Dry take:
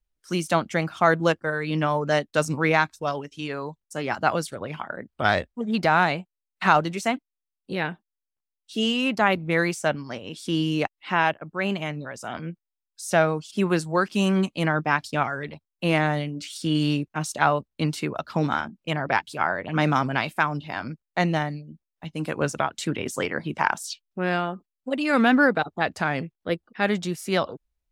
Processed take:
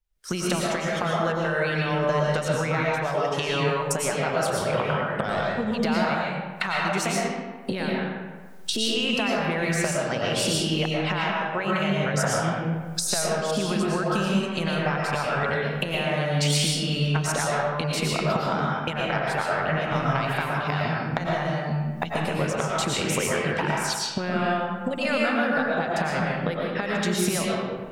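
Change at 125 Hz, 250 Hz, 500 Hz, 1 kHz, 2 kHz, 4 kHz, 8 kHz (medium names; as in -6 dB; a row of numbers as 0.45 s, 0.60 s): +2.0 dB, -1.0 dB, +1.0 dB, -2.0 dB, -1.0 dB, +4.0 dB, +8.5 dB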